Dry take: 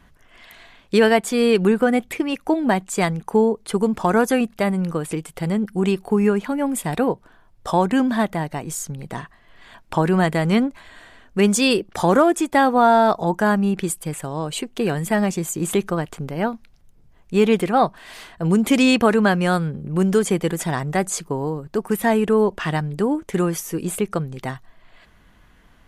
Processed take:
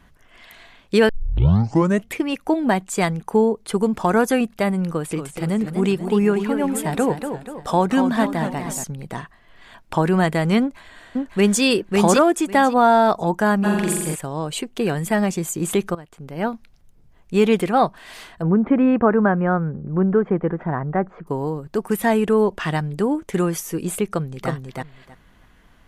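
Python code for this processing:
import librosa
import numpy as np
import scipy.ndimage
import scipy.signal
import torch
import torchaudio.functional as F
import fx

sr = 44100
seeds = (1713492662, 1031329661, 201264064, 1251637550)

y = fx.echo_warbled(x, sr, ms=239, feedback_pct=47, rate_hz=2.8, cents=162, wet_db=-8.0, at=(4.92, 8.84))
y = fx.echo_throw(y, sr, start_s=10.6, length_s=1.03, ms=550, feedback_pct=15, wet_db=-2.0)
y = fx.room_flutter(y, sr, wall_m=7.5, rt60_s=1.2, at=(13.63, 14.14), fade=0.02)
y = fx.lowpass(y, sr, hz=1600.0, slope=24, at=(18.42, 21.27))
y = fx.echo_throw(y, sr, start_s=24.08, length_s=0.42, ms=320, feedback_pct=15, wet_db=-2.0)
y = fx.edit(y, sr, fx.tape_start(start_s=1.09, length_s=1.04),
    fx.fade_in_from(start_s=15.95, length_s=0.53, curve='qua', floor_db=-16.0), tone=tone)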